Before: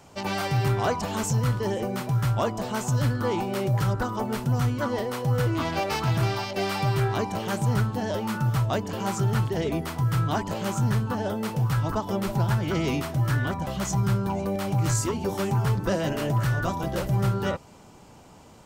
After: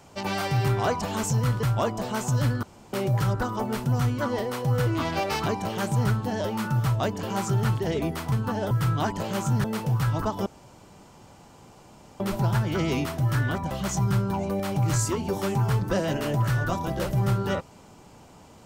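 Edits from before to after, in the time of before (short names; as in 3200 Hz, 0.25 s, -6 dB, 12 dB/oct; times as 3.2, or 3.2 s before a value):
1.63–2.23 cut
3.23–3.53 room tone
6.06–7.16 cut
10.95–11.34 move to 10.02
12.16 insert room tone 1.74 s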